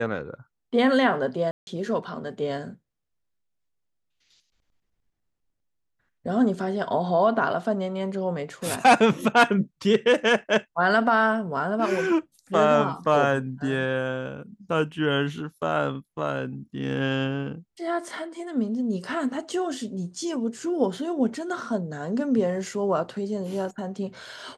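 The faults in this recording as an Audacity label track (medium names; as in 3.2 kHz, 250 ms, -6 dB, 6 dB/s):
1.510000	1.670000	dropout 161 ms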